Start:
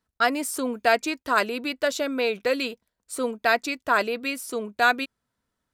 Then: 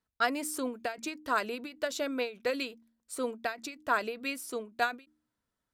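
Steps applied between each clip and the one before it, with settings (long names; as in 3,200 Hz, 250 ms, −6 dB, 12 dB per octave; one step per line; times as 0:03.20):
hum removal 76.33 Hz, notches 4
every ending faded ahead of time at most 170 dB per second
level −6 dB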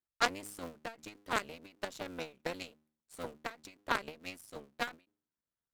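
sub-harmonics by changed cycles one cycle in 3, muted
harmonic generator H 3 −11 dB, 8 −36 dB, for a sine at −14.5 dBFS
level +5 dB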